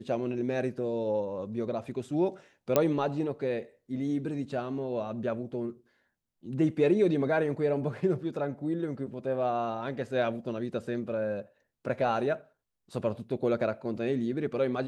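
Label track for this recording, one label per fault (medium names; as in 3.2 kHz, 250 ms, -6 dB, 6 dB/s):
2.760000	2.760000	pop -9 dBFS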